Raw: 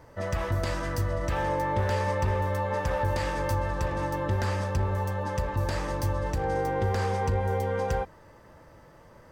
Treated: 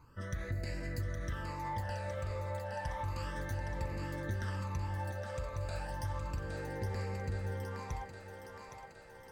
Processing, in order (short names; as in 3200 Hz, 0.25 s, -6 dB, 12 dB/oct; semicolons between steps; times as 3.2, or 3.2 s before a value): compressor, threshold -27 dBFS, peak gain reduction 6 dB; phaser stages 12, 0.32 Hz, lowest notch 300–1100 Hz; thinning echo 0.816 s, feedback 68%, high-pass 340 Hz, level -5.5 dB; gain -6 dB